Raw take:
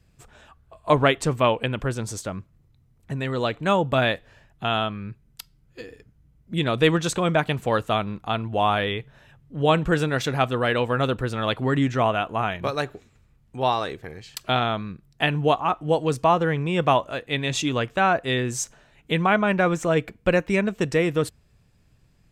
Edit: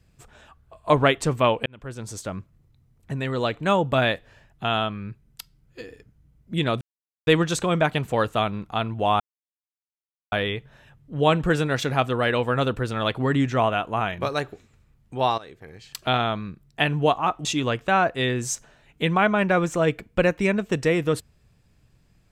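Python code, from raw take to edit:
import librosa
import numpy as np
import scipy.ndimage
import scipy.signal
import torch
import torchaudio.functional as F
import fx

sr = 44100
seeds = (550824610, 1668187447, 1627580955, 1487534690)

y = fx.edit(x, sr, fx.fade_in_span(start_s=1.66, length_s=0.68),
    fx.insert_silence(at_s=6.81, length_s=0.46),
    fx.insert_silence(at_s=8.74, length_s=1.12),
    fx.fade_in_from(start_s=13.8, length_s=0.67, floor_db=-17.0),
    fx.cut(start_s=15.87, length_s=1.67), tone=tone)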